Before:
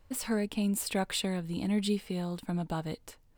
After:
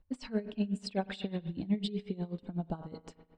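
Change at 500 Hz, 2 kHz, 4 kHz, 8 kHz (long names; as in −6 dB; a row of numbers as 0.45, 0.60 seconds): −4.0 dB, −8.0 dB, −7.0 dB, below −20 dB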